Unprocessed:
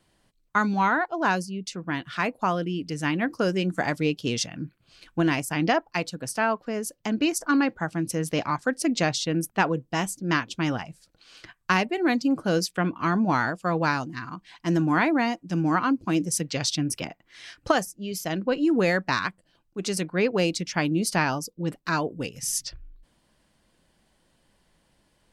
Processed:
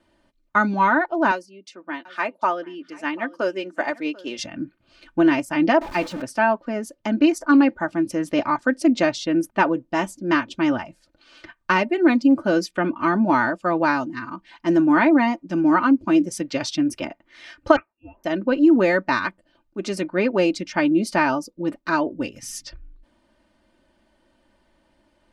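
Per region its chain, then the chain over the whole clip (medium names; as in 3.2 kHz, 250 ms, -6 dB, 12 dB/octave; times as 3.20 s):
1.31–4.39 s: high-pass 390 Hz + delay 741 ms -17 dB + upward expansion, over -35 dBFS
5.81–6.22 s: jump at every zero crossing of -31.5 dBFS + de-esser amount 60%
17.76–18.24 s: Bessel high-pass 2.3 kHz + frequency inversion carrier 3.1 kHz
whole clip: low-pass 1.7 kHz 6 dB/octave; bass shelf 110 Hz -7 dB; comb 3.3 ms, depth 70%; trim +4.5 dB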